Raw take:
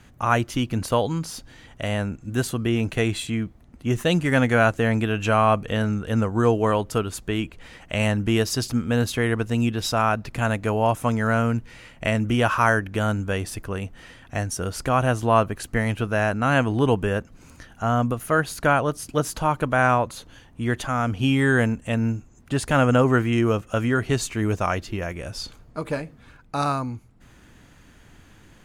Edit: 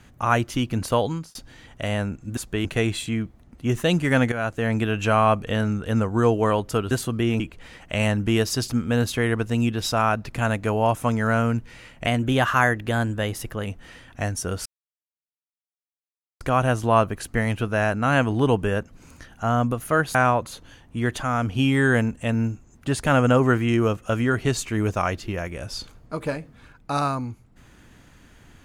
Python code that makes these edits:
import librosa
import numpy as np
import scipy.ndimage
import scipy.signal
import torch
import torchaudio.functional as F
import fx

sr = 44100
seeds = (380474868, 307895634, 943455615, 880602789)

y = fx.edit(x, sr, fx.fade_out_span(start_s=1.08, length_s=0.27),
    fx.swap(start_s=2.37, length_s=0.49, other_s=7.12, other_length_s=0.28),
    fx.fade_in_from(start_s=4.53, length_s=0.5, floor_db=-13.0),
    fx.speed_span(start_s=12.06, length_s=1.74, speed=1.09),
    fx.insert_silence(at_s=14.8, length_s=1.75),
    fx.cut(start_s=18.54, length_s=1.25), tone=tone)